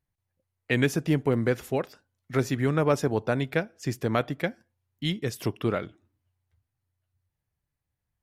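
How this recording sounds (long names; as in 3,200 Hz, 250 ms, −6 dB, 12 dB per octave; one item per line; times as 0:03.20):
background noise floor −84 dBFS
spectral slope −5.5 dB per octave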